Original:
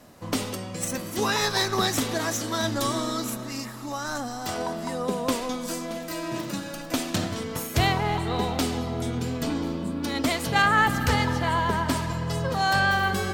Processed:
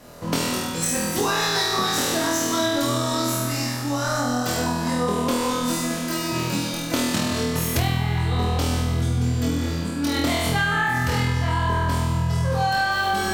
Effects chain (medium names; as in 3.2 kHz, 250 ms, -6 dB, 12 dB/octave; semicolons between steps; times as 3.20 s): 9.56–10.15 s: bass shelf 320 Hz -7 dB; flutter echo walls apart 4.2 m, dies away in 1.1 s; compression 10:1, threshold -22 dBFS, peak gain reduction 12.5 dB; trim +3.5 dB